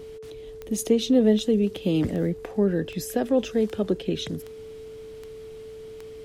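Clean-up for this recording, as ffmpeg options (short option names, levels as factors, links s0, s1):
-af "adeclick=t=4,bandreject=f=440:w=30"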